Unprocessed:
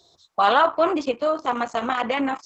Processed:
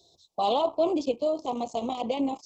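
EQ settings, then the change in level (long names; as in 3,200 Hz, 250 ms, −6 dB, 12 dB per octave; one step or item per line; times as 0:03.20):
Butterworth band-reject 1,600 Hz, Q 0.62
−2.5 dB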